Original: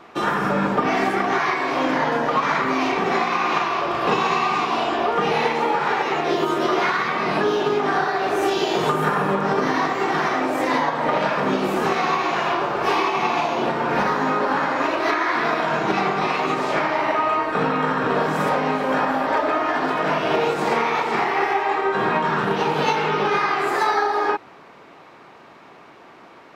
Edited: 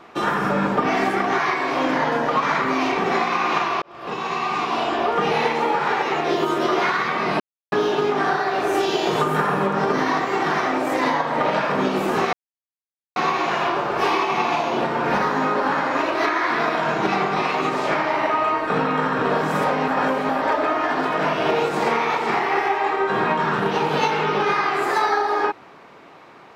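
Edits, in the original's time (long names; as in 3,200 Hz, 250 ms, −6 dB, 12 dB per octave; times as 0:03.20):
0:03.82–0:05.11: fade in equal-power
0:07.40: splice in silence 0.32 s
0:12.01: splice in silence 0.83 s
0:18.73–0:19.14: reverse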